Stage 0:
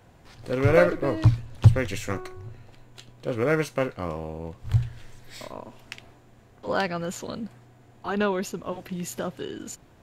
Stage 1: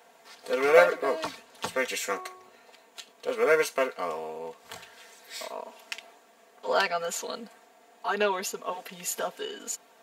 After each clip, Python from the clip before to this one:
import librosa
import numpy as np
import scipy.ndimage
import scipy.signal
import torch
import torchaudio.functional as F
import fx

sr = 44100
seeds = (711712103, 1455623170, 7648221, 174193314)

y = scipy.signal.sosfilt(scipy.signal.cheby1(2, 1.0, 570.0, 'highpass', fs=sr, output='sos'), x)
y = fx.high_shelf(y, sr, hz=4400.0, db=5.0)
y = y + 0.93 * np.pad(y, (int(4.4 * sr / 1000.0), 0))[:len(y)]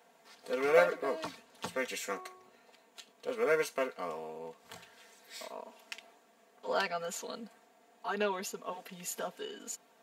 y = fx.peak_eq(x, sr, hz=180.0, db=6.0, octaves=1.5)
y = y * 10.0 ** (-7.5 / 20.0)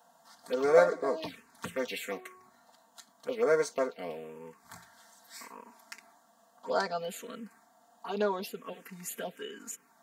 y = fx.env_phaser(x, sr, low_hz=380.0, high_hz=2800.0, full_db=-29.0)
y = y * 10.0 ** (4.0 / 20.0)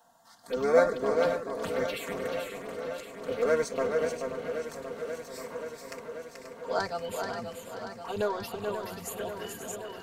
y = fx.octave_divider(x, sr, octaves=1, level_db=-6.0)
y = y + 10.0 ** (-5.5 / 20.0) * np.pad(y, (int(433 * sr / 1000.0), 0))[:len(y)]
y = fx.echo_warbled(y, sr, ms=533, feedback_pct=78, rate_hz=2.8, cents=64, wet_db=-9.5)